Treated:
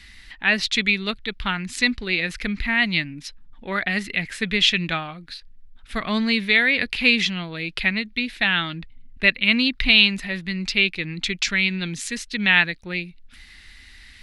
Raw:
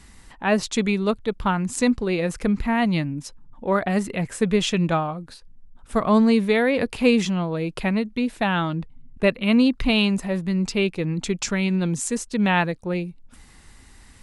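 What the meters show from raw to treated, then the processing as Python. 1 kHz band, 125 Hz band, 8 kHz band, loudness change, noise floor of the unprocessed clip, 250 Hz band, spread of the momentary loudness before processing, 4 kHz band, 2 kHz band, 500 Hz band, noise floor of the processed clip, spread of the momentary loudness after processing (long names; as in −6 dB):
−6.0 dB, −6.0 dB, −3.0 dB, +1.5 dB, −50 dBFS, −6.0 dB, 9 LU, +9.5 dB, +9.0 dB, −9.5 dB, −48 dBFS, 13 LU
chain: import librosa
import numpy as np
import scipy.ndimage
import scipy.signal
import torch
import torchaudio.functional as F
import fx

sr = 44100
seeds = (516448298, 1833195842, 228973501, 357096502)

y = fx.graphic_eq_10(x, sr, hz=(125, 250, 500, 1000, 2000, 4000, 8000), db=(-9, -3, -10, -9, 10, 10, -9))
y = y * 10.0 ** (1.0 / 20.0)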